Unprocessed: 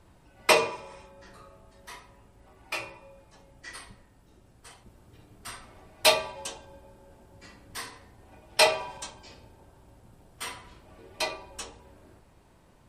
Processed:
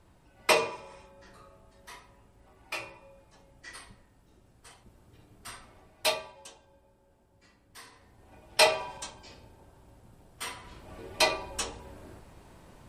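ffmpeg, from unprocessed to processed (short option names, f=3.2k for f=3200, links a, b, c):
-af "volume=14.5dB,afade=t=out:st=5.57:d=0.82:silence=0.375837,afade=t=in:st=7.81:d=0.62:silence=0.298538,afade=t=in:st=10.56:d=0.4:silence=0.446684"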